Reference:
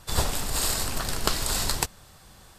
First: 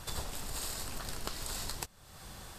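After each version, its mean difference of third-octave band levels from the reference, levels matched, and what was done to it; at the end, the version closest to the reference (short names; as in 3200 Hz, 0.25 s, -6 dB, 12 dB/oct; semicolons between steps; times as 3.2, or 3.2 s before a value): 4.5 dB: compressor 3:1, threshold -45 dBFS, peak gain reduction 19.5 dB; gain +3.5 dB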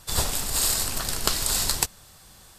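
3.0 dB: high shelf 3500 Hz +7.5 dB; gain -2 dB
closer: second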